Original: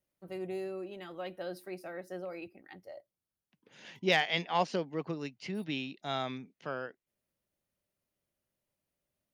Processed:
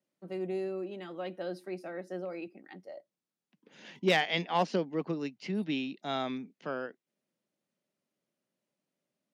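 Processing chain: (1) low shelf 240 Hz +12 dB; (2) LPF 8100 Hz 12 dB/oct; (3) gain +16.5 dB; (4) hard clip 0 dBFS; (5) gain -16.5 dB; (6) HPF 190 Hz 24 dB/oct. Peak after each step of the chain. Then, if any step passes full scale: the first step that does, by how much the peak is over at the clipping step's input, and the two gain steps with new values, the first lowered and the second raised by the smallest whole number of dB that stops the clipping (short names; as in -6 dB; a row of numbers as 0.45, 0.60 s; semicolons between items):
-13.0, -13.0, +3.5, 0.0, -16.5, -13.5 dBFS; step 3, 3.5 dB; step 3 +12.5 dB, step 5 -12.5 dB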